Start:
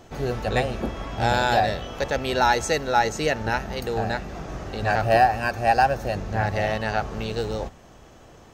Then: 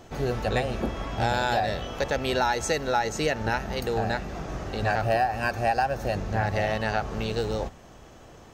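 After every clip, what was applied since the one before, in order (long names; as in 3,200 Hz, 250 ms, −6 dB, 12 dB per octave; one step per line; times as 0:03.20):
downward compressor 4 to 1, threshold −21 dBFS, peak gain reduction 8 dB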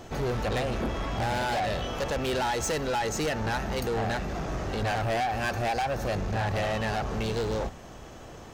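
soft clipping −29 dBFS, distortion −7 dB
level +4 dB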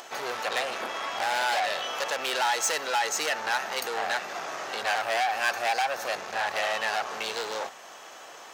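high-pass filter 840 Hz 12 dB per octave
upward compression, threshold −48 dBFS
level +5.5 dB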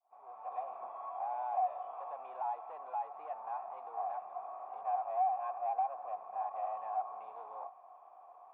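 fade in at the beginning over 0.64 s
formant resonators in series a
level −1 dB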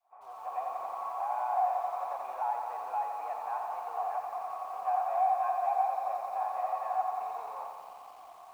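parametric band 1,700 Hz +8.5 dB 2 octaves
feedback echo at a low word length 88 ms, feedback 80%, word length 10 bits, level −6 dB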